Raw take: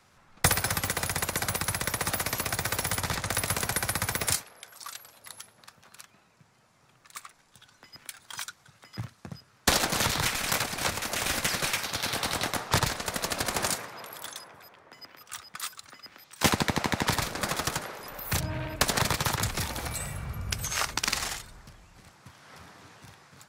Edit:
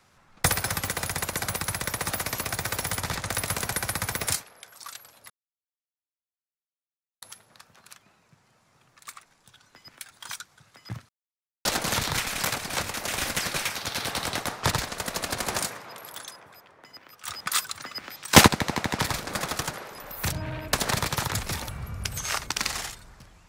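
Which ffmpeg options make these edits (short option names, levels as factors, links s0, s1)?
-filter_complex "[0:a]asplit=7[s0][s1][s2][s3][s4][s5][s6];[s0]atrim=end=5.3,asetpts=PTS-STARTPTS,afade=t=out:st=5.296:d=0.004:c=hsin,apad=pad_dur=1.92[s7];[s1]atrim=start=5.3:end=9.17,asetpts=PTS-STARTPTS,afade=t=in:d=0.004:c=hsin,afade=t=out:st=3.866:d=0.004:c=hsin[s8];[s2]atrim=start=9.17:end=9.73,asetpts=PTS-STARTPTS,volume=0[s9];[s3]atrim=start=9.73:end=15.362,asetpts=PTS-STARTPTS,afade=t=in:d=0.004:c=hsin[s10];[s4]atrim=start=15.358:end=16.562,asetpts=PTS-STARTPTS,volume=3.35[s11];[s5]atrim=start=16.558:end=19.772[s12];[s6]atrim=start=20.158[s13];[s7][s8][s9][s10]concat=n=4:v=0:a=1[s14];[s14][s11]acrossfade=d=0.004:c1=hsin:c2=hsin[s15];[s15][s12]acrossfade=d=0.004:c1=hsin:c2=hsin[s16];[s16][s13]acrossfade=d=0.004:c1=hsin:c2=hsin"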